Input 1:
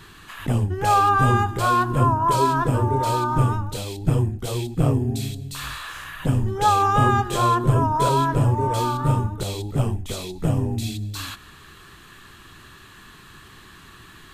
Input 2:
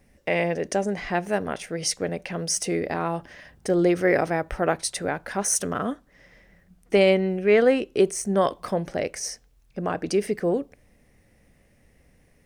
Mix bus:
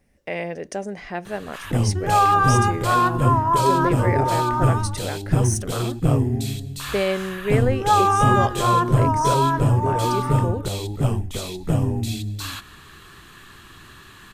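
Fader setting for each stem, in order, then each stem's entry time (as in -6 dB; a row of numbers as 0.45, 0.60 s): +1.0, -4.5 dB; 1.25, 0.00 s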